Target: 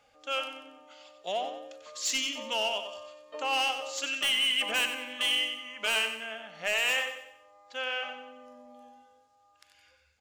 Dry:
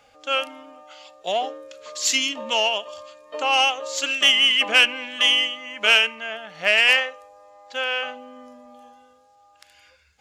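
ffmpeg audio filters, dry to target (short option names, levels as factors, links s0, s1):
-filter_complex "[0:a]asoftclip=type=hard:threshold=0.188,asplit=2[s0][s1];[s1]aecho=0:1:93|186|279|372|465:0.355|0.149|0.0626|0.0263|0.011[s2];[s0][s2]amix=inputs=2:normalize=0,volume=0.376"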